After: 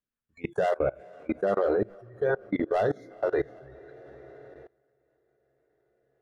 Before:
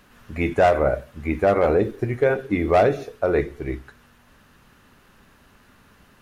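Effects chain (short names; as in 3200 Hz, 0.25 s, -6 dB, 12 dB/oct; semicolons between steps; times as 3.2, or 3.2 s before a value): spectral noise reduction 29 dB; rotary speaker horn 5 Hz, later 0.65 Hz, at 2.36; diffused feedback echo 0.464 s, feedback 48%, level -14.5 dB; level quantiser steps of 24 dB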